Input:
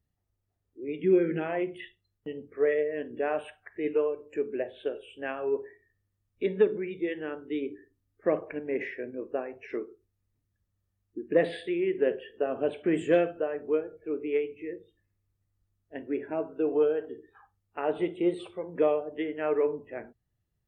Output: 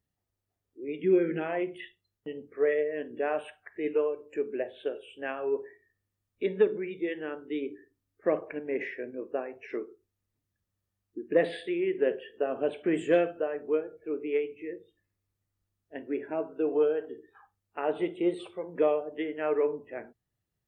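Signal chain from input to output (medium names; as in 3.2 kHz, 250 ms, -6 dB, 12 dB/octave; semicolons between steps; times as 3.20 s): bass shelf 110 Hz -10.5 dB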